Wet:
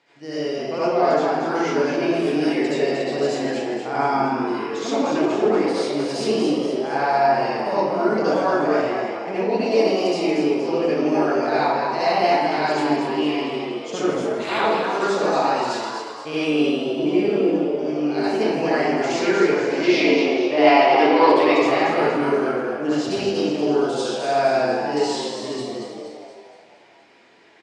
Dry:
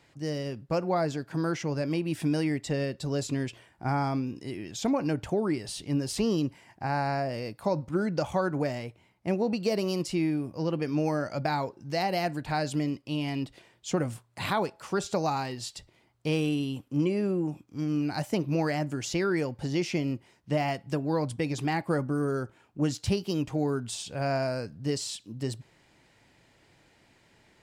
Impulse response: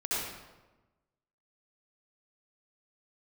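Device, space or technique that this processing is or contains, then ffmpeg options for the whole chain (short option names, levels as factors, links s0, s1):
supermarket ceiling speaker: -filter_complex "[0:a]asettb=1/sr,asplit=3[s0][s1][s2];[s0]atrim=end=19.804[s3];[s1]atrim=start=19.8:end=21.53,asetpts=PTS-STARTPTS,afade=t=in:d=0.004:c=qsin,afade=t=out:st=1.726:d=0.004:c=qsin,equalizer=f=125:t=o:w=1:g=-10,equalizer=f=250:t=o:w=1:g=6,equalizer=f=500:t=o:w=1:g=4,equalizer=f=1000:t=o:w=1:g=7,equalizer=f=2000:t=o:w=1:g=5,equalizer=f=4000:t=o:w=1:g=10,equalizer=f=8000:t=o:w=1:g=-7[s4];[s2]atrim=start=21.526[s5];[s3][s4]acrossfade=d=0.004:c1=hsin:c2=qsin[s6];[s6][s5]acrossfade=d=0.004:c1=qsin:c2=hsin,asplit=7[s7][s8][s9][s10][s11][s12][s13];[s8]adelay=235,afreqshift=91,volume=0.473[s14];[s9]adelay=470,afreqshift=182,volume=0.243[s15];[s10]adelay=705,afreqshift=273,volume=0.123[s16];[s11]adelay=940,afreqshift=364,volume=0.0631[s17];[s12]adelay=1175,afreqshift=455,volume=0.032[s18];[s13]adelay=1410,afreqshift=546,volume=0.0164[s19];[s7][s14][s15][s16][s17][s18][s19]amix=inputs=7:normalize=0,highpass=300,lowpass=5200[s20];[1:a]atrim=start_sample=2205[s21];[s20][s21]afir=irnorm=-1:irlink=0,volume=1.33"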